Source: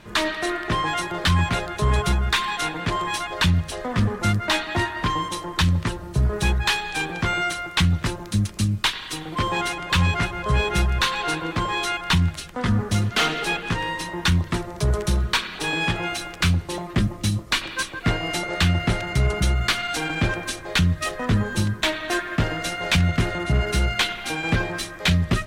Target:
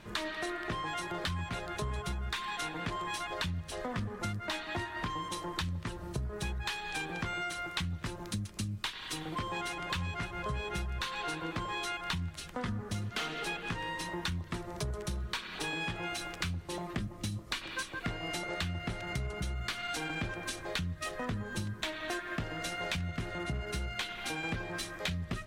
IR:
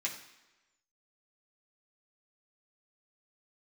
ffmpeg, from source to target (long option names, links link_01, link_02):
-af "acompressor=threshold=-28dB:ratio=6,volume=-5.5dB"